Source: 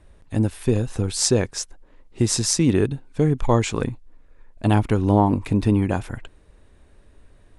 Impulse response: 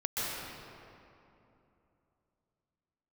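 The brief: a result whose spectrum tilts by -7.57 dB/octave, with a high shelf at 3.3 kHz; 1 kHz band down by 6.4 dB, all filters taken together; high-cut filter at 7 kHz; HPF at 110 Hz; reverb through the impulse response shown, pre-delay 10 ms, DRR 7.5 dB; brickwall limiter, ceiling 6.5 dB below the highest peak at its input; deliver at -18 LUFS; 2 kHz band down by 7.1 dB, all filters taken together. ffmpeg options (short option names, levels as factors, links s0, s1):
-filter_complex "[0:a]highpass=110,lowpass=7000,equalizer=f=1000:t=o:g=-7,equalizer=f=2000:t=o:g=-4.5,highshelf=f=3300:g=-7.5,alimiter=limit=0.224:level=0:latency=1,asplit=2[s0][s1];[1:a]atrim=start_sample=2205,adelay=10[s2];[s1][s2]afir=irnorm=-1:irlink=0,volume=0.178[s3];[s0][s3]amix=inputs=2:normalize=0,volume=2.24"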